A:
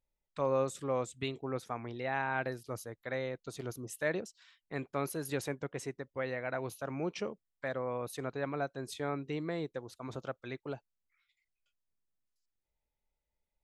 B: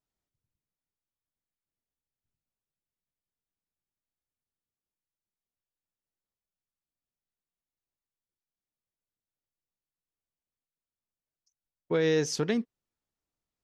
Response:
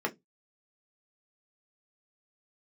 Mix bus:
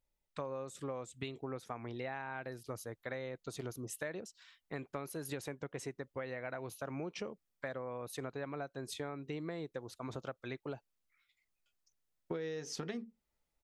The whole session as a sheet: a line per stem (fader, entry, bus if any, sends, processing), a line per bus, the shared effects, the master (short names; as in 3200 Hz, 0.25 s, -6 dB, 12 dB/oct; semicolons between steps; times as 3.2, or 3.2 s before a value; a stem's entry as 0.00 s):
+1.0 dB, 0.00 s, no send, dry
-1.0 dB, 0.40 s, send -14.5 dB, dry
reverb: on, RT60 0.15 s, pre-delay 3 ms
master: compressor 16:1, threshold -37 dBFS, peak gain reduction 17.5 dB